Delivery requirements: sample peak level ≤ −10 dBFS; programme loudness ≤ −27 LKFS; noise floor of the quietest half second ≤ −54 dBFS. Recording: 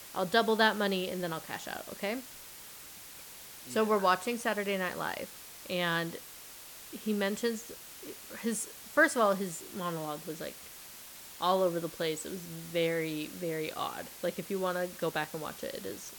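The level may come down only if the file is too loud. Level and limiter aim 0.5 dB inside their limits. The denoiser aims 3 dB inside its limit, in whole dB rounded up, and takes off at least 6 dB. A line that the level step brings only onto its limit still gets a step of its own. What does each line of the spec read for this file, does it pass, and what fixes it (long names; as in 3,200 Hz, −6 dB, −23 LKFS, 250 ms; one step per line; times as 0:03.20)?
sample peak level −11.5 dBFS: in spec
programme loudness −32.5 LKFS: in spec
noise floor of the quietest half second −49 dBFS: out of spec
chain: broadband denoise 8 dB, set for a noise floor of −49 dBFS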